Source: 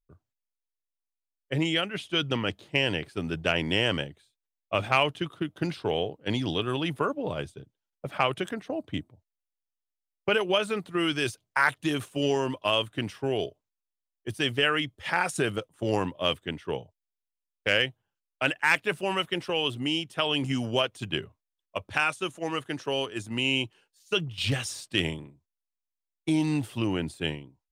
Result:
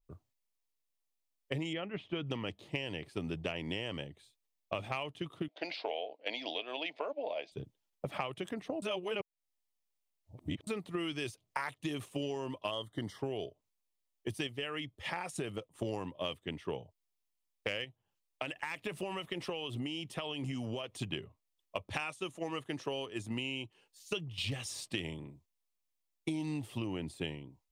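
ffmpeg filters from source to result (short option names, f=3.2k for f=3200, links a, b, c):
-filter_complex "[0:a]asettb=1/sr,asplit=3[a][b][c];[a]atrim=end=1.734[d];[b]atrim=start=1.73:end=2.27,asetpts=PTS-STARTPTS,afade=t=in:d=0.004:c=qsin,afade=t=out:st=0.536:d=0.004:c=qsin,lowpass=2k[e];[c]atrim=start=2.266[f];[d][e]acrossfade=d=0.004:c1=hsin:c2=qsin[g];[g][f]acrossfade=d=0.004:c1=qsin:c2=hsin,asettb=1/sr,asplit=3[h][i][j];[h]atrim=end=5.484[k];[i]atrim=start=5.48:end=7.52,asetpts=PTS-STARTPTS,afade=t=in:d=0.004:c=qsin,afade=t=out:st=2.036:d=0.004:c=qsin,highpass=f=360:w=0.5412,highpass=f=360:w=1.3066,equalizer=f=380:t=q:w=4:g=-10,equalizer=f=660:t=q:w=4:g=9,equalizer=f=1.2k:t=q:w=4:g=-10,equalizer=f=2.3k:t=q:w=4:g=8,equalizer=f=4.5k:t=q:w=4:g=7,lowpass=f=5.1k:w=0.5412,lowpass=f=5.1k:w=1.3066[l];[j]atrim=start=7.516[m];[k][l]acrossfade=d=0.004:c1=hsin:c2=qsin[n];[n][m]acrossfade=d=0.004:c1=qsin:c2=hsin,asettb=1/sr,asplit=3[o][p][q];[o]atrim=end=12.714[r];[p]atrim=start=12.71:end=13.19,asetpts=PTS-STARTPTS,afade=t=in:d=0.004:c=qsin,afade=t=out:st=0.476:d=0.004:c=qsin,asuperstop=centerf=2500:order=8:qfactor=3.1[s];[q]atrim=start=13.186[t];[r][s]acrossfade=d=0.004:c1=hsin:c2=qsin[u];[u][t]acrossfade=d=0.004:c1=qsin:c2=hsin,asettb=1/sr,asplit=3[v][w][x];[v]atrim=end=17.844[y];[w]atrim=start=17.84:end=20.9,asetpts=PTS-STARTPTS,afade=t=in:d=0.004:c=qsin,afade=t=out:st=3.056:d=0.004:c=qsin,acompressor=threshold=-32dB:ratio=4:attack=3.2:release=140:knee=1:detection=peak[z];[x]atrim=start=20.896[aa];[y][z]acrossfade=d=0.004:c1=hsin:c2=qsin[ab];[ab][aa]acrossfade=d=0.004:c1=qsin:c2=hsin,asplit=5[ac][ad][ae][af][ag];[ac]atrim=end=8.822[ah];[ad]atrim=start=8.818:end=10.672,asetpts=PTS-STARTPTS,areverse[ai];[ae]atrim=start=10.668:end=14.472[aj];[af]atrim=start=14.468:end=15.752,asetpts=PTS-STARTPTS,volume=-5.5dB[ak];[ag]atrim=start=15.748[al];[ah][ai]acrossfade=d=0.004:c1=hsin:c2=hsin[am];[am][aj]acrossfade=d=0.004:c1=hsin:c2=hsin[an];[an][ak]acrossfade=d=0.004:c1=hsin:c2=hsin[ao];[ao][al]acrossfade=d=0.004:c1=hsin:c2=hsin,equalizer=f=1.5k:t=o:w=0.28:g=-10.5,acompressor=threshold=-39dB:ratio=6,adynamicequalizer=threshold=0.00112:dfrequency=3400:dqfactor=0.7:tfrequency=3400:tqfactor=0.7:attack=5:release=100:ratio=0.375:range=1.5:mode=cutabove:tftype=highshelf,volume=4dB"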